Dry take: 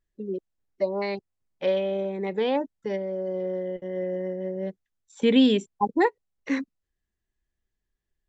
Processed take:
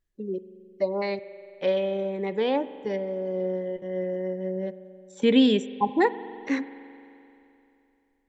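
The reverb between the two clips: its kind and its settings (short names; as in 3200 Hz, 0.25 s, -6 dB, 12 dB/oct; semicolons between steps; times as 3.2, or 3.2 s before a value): spring tank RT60 2.9 s, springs 43 ms, chirp 65 ms, DRR 14 dB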